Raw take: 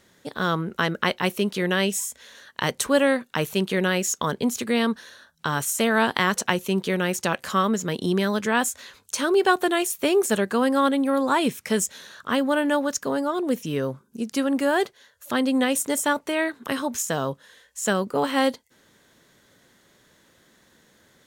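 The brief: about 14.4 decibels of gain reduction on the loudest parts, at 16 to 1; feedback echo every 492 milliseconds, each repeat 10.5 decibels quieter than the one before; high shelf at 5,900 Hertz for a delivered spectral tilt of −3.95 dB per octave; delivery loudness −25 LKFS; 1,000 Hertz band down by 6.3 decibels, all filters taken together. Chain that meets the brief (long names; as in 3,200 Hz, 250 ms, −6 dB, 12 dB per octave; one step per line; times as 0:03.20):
parametric band 1,000 Hz −8 dB
high-shelf EQ 5,900 Hz −7 dB
downward compressor 16 to 1, threshold −31 dBFS
repeating echo 492 ms, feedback 30%, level −10.5 dB
level +11 dB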